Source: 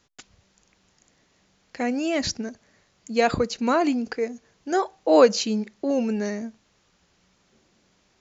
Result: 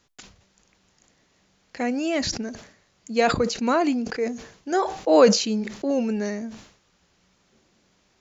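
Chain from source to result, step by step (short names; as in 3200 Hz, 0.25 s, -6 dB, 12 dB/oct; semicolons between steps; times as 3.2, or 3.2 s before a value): sustainer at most 100 dB/s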